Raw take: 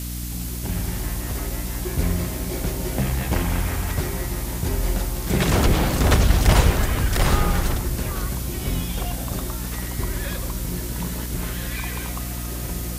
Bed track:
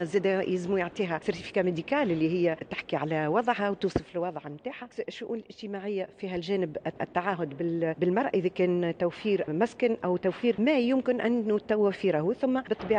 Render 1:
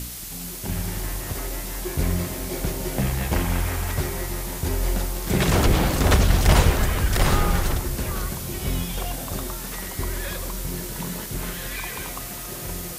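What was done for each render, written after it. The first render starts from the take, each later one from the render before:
hum removal 60 Hz, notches 5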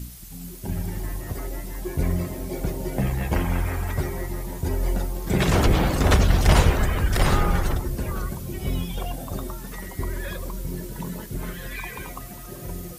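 broadband denoise 11 dB, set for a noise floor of −34 dBFS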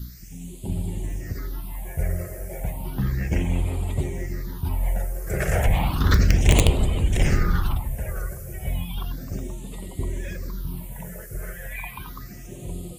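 wrap-around overflow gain 6 dB
all-pass phaser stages 6, 0.33 Hz, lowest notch 250–1,600 Hz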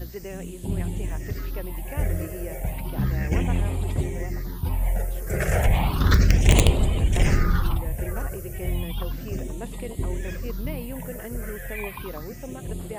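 mix in bed track −11.5 dB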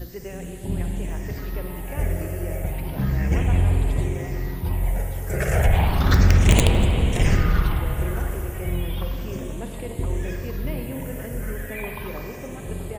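slap from a distant wall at 41 metres, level −18 dB
spring reverb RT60 3.6 s, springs 45/56 ms, chirp 70 ms, DRR 3 dB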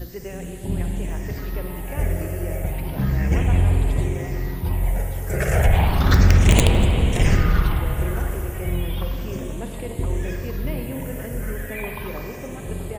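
level +1.5 dB
brickwall limiter −1 dBFS, peak gain reduction 1.5 dB

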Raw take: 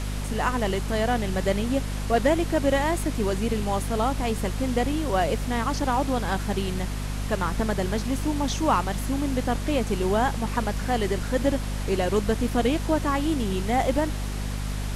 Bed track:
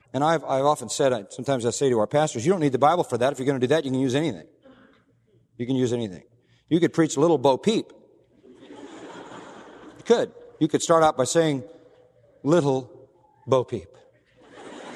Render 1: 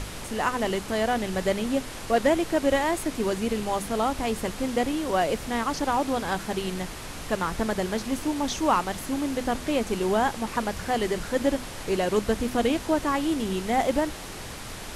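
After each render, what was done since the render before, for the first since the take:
mains-hum notches 50/100/150/200/250 Hz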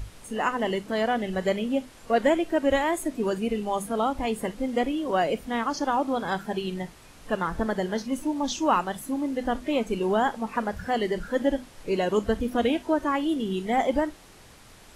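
noise reduction from a noise print 13 dB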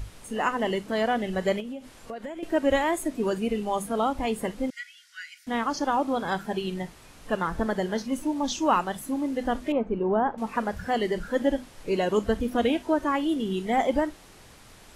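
0:01.60–0:02.43: downward compressor 8 to 1, threshold −33 dBFS
0:04.70–0:05.47: Chebyshev high-pass with heavy ripple 1,400 Hz, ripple 9 dB
0:09.72–0:10.38: low-pass filter 1,200 Hz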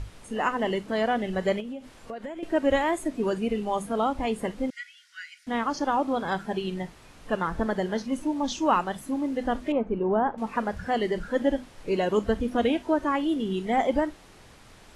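Butterworth low-pass 12,000 Hz 48 dB per octave
high-shelf EQ 6,100 Hz −6.5 dB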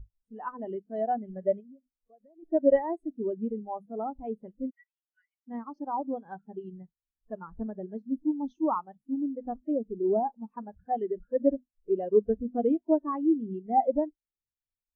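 every bin expanded away from the loudest bin 2.5 to 1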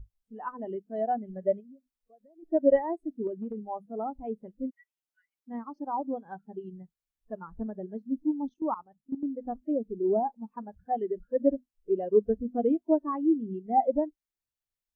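0:03.27–0:03.68: downward compressor, threshold −31 dBFS
0:08.49–0:09.26: output level in coarse steps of 14 dB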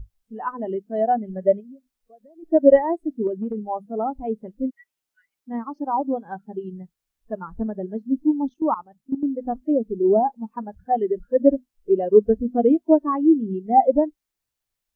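level +8.5 dB

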